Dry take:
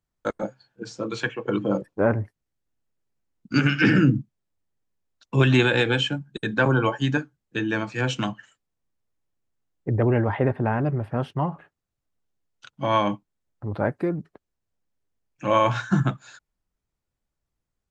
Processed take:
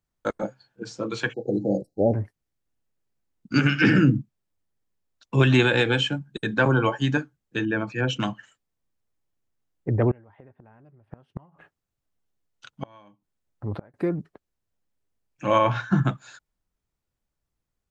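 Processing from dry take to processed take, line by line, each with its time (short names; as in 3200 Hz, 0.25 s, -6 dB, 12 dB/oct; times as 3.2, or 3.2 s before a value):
1.33–2.14 spectral delete 830–3800 Hz
7.65–8.2 formant sharpening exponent 1.5
10.11–13.94 flipped gate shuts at -18 dBFS, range -30 dB
15.58–16.05 air absorption 130 m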